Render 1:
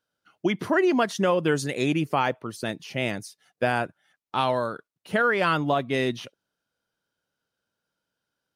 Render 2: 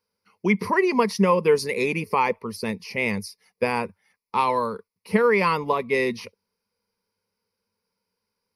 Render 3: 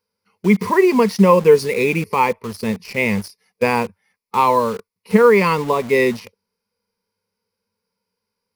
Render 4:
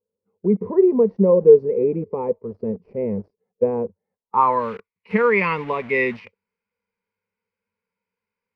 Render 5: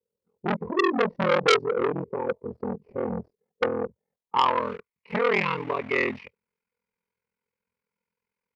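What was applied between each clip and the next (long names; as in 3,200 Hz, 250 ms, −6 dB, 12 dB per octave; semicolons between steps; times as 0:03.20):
EQ curve with evenly spaced ripples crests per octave 0.87, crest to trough 16 dB
harmonic and percussive parts rebalanced harmonic +7 dB; in parallel at −3 dB: bit reduction 5 bits; on the sum: level −3.5 dB
low-pass filter sweep 480 Hz → 2,300 Hz, 0:04.08–0:04.66; level −7 dB
ring modulation 21 Hz; saturating transformer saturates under 2,600 Hz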